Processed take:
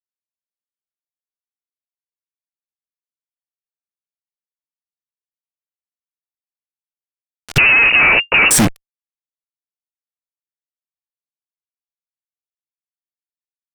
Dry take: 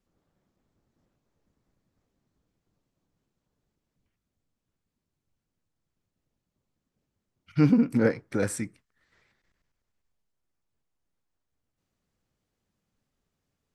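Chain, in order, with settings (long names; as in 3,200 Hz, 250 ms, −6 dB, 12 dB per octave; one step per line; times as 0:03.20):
fuzz pedal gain 48 dB, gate −48 dBFS
harmonic generator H 4 −9 dB, 7 −26 dB, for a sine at −10.5 dBFS
0:07.58–0:08.51: voice inversion scrambler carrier 2,800 Hz
level +3 dB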